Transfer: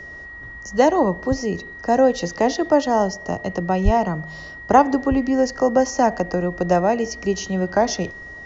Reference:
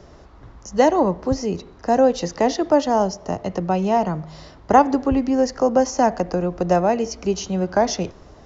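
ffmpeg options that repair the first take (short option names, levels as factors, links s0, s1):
-filter_complex "[0:a]bandreject=f=1900:w=30,asplit=3[s0][s1][s2];[s0]afade=t=out:st=3.84:d=0.02[s3];[s1]highpass=f=140:w=0.5412,highpass=f=140:w=1.3066,afade=t=in:st=3.84:d=0.02,afade=t=out:st=3.96:d=0.02[s4];[s2]afade=t=in:st=3.96:d=0.02[s5];[s3][s4][s5]amix=inputs=3:normalize=0"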